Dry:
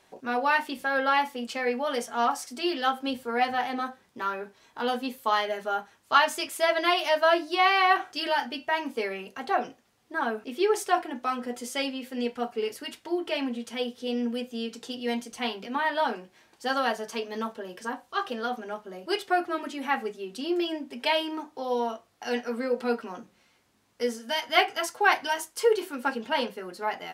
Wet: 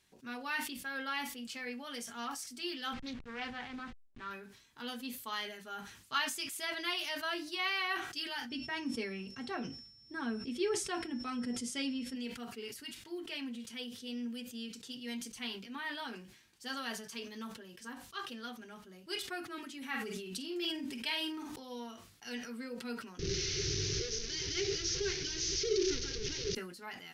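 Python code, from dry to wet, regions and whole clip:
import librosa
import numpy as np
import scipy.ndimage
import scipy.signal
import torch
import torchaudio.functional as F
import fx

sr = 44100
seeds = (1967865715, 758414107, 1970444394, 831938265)

y = fx.chain(x, sr, fx.delta_hold(step_db=-38.0),
    fx.lowpass(hz=3100.0, slope=12),
    fx.doppler_dist(depth_ms=0.27), at=(2.93, 4.31))
y = fx.lowpass(y, sr, hz=10000.0, slope=24, at=(8.49, 12.14), fade=0.02)
y = fx.low_shelf(y, sr, hz=420.0, db=12.0, at=(8.49, 12.14), fade=0.02)
y = fx.dmg_tone(y, sr, hz=5400.0, level_db=-52.0, at=(8.49, 12.14), fade=0.02)
y = fx.chain(y, sr, fx.doubler(ms=48.0, db=-7.0),
    fx.sustainer(db_per_s=25.0), at=(19.77, 21.56))
y = fx.chain(y, sr, fx.delta_mod(bps=32000, step_db=-17.5),
    fx.curve_eq(hz=(160.0, 230.0, 390.0, 590.0, 1000.0, 1600.0, 3300.0, 6200.0, 8900.0), db=(0, -24, 14, -16, -21, -10, -8, 3, -26)), at=(23.19, 26.55))
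y = fx.tone_stack(y, sr, knobs='6-0-2')
y = fx.sustainer(y, sr, db_per_s=71.0)
y = y * librosa.db_to_amplitude(9.0)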